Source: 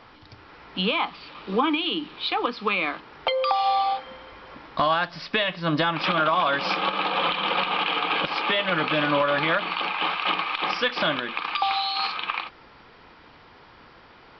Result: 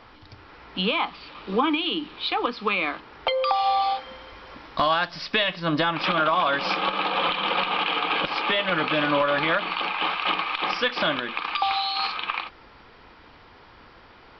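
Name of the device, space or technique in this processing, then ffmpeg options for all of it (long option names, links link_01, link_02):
low shelf boost with a cut just above: -filter_complex "[0:a]asettb=1/sr,asplit=3[link_01][link_02][link_03];[link_01]atrim=end=3.824[link_04];[link_02]atrim=start=3.82:end=5.6,asetpts=PTS-STARTPTS,afade=type=in:duration=0.004:curve=qsin,afade=type=out:start_time=1.776:duration=0.004:curve=qsin,aemphasis=mode=production:type=cd[link_05];[link_03]atrim=start=5.596[link_06];[link_04][link_05]acrossfade=duration=0.004:curve1=hsin:curve2=qsin[link_07];[link_07][link_06]acrossfade=duration=0.004:curve1=qsin:curve2=hsin,lowshelf=frequency=98:gain=6,equalizer=frequency=150:width_type=o:width=0.58:gain=-4"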